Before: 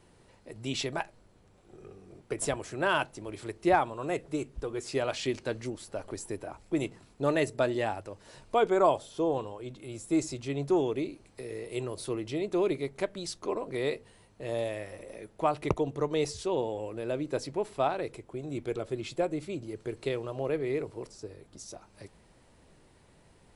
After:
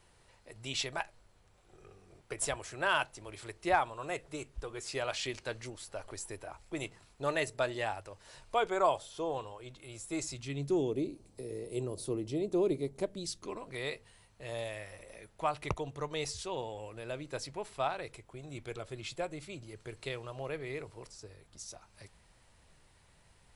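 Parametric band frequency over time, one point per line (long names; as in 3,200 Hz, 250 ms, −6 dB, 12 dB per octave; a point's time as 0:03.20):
parametric band −12 dB 2.2 octaves
0:10.21 250 Hz
0:10.97 1,800 Hz
0:13.06 1,800 Hz
0:13.75 310 Hz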